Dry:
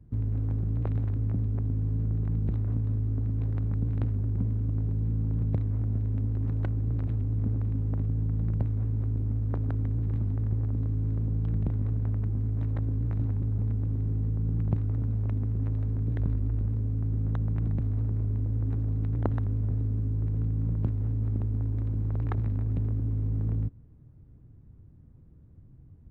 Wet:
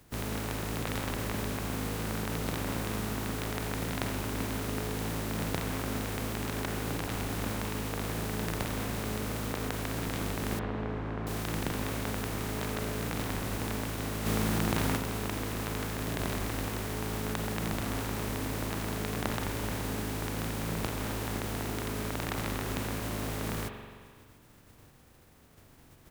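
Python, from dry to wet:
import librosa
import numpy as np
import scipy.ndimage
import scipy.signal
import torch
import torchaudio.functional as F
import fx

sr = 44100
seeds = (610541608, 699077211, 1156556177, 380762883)

y = fx.spec_flatten(x, sr, power=0.38)
y = fx.lowpass(y, sr, hz=1600.0, slope=12, at=(10.59, 11.27))
y = fx.rev_spring(y, sr, rt60_s=1.8, pass_ms=(42,), chirp_ms=80, drr_db=3.5)
y = fx.env_flatten(y, sr, amount_pct=100, at=(14.25, 14.96), fade=0.02)
y = y * 10.0 ** (-6.5 / 20.0)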